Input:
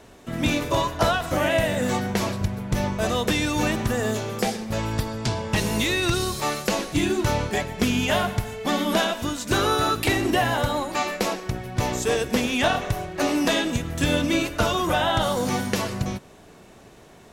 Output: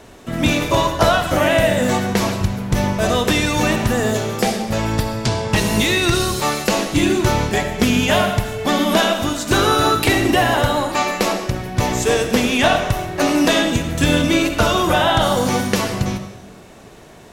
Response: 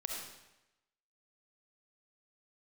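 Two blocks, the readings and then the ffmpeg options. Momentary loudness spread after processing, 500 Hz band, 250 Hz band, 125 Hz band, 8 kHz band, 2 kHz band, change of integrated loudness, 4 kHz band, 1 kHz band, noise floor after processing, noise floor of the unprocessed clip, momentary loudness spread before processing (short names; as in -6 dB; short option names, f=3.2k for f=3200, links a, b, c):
6 LU, +6.5 dB, +6.5 dB, +6.0 dB, +6.5 dB, +6.5 dB, +6.5 dB, +6.5 dB, +6.5 dB, -42 dBFS, -49 dBFS, 6 LU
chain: -filter_complex "[0:a]asplit=2[a][b];[1:a]atrim=start_sample=2205[c];[b][c]afir=irnorm=-1:irlink=0,volume=-1.5dB[d];[a][d]amix=inputs=2:normalize=0,volume=1.5dB"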